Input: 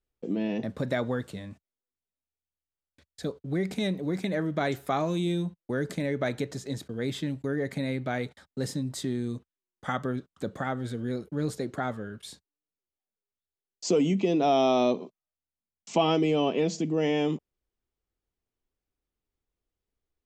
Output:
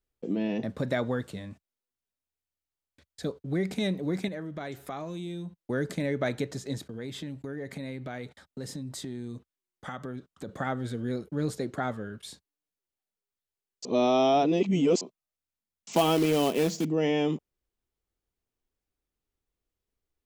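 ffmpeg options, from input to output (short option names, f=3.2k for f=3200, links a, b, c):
-filter_complex "[0:a]asettb=1/sr,asplit=3[a][b][c];[a]atrim=end=4.284[d];[b]atrim=start=4.28:end=5.56,asetpts=PTS-STARTPTS,afade=t=in:d=0.004:c=qsin,afade=t=out:st=1.276:d=0.004:c=qsin,acompressor=threshold=-40dB:ratio=2:attack=3.2:release=140:knee=1:detection=peak[e];[c]atrim=start=5.556[f];[d][e]acrossfade=d=0.004:c1=hsin:c2=qsin[g];[g][f]acrossfade=d=0.004:c1=qsin:c2=hsin,asettb=1/sr,asplit=3[h][i][j];[h]atrim=end=6.824[k];[i]atrim=start=6.82:end=10.49,asetpts=PTS-STARTPTS,afade=t=in:d=0.004:c=qsin,afade=t=out:st=3.666:d=0.004:c=qsin,acompressor=threshold=-36dB:ratio=2.5:attack=3.2:release=140:knee=1:detection=peak[l];[j]atrim=start=10.486[m];[k][l]acrossfade=d=0.004:c1=hsin:c2=qsin[n];[n][m]acrossfade=d=0.004:c1=qsin:c2=hsin,asettb=1/sr,asplit=3[o][p][q];[o]atrim=end=15.924[r];[p]atrim=start=15.92:end=16.85,asetpts=PTS-STARTPTS,afade=t=in:d=0.004:c=qsin,afade=t=out:st=0.926:d=0.004:c=qsin,acrusher=bits=3:mode=log:mix=0:aa=0.000001[s];[q]atrim=start=16.846[t];[r][s]acrossfade=d=0.004:c1=hsin:c2=qsin[u];[u][t]acrossfade=d=0.004:c1=qsin:c2=hsin,asplit=3[v][w][x];[v]atrim=end=13.852[y];[w]atrim=start=13.848:end=15.012,asetpts=PTS-STARTPTS,areverse[z];[x]atrim=start=15.008[aa];[y][z]acrossfade=d=0.004:c1=hsin:c2=hsin[ab];[ab][aa]acrossfade=d=0.004:c1=hsin:c2=hsin"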